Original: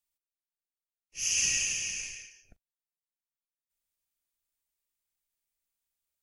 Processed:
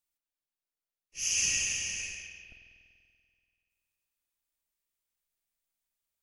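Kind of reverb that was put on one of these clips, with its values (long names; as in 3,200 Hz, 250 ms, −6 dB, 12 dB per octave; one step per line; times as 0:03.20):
spring reverb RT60 2.2 s, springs 48 ms, chirp 40 ms, DRR 5 dB
level −1 dB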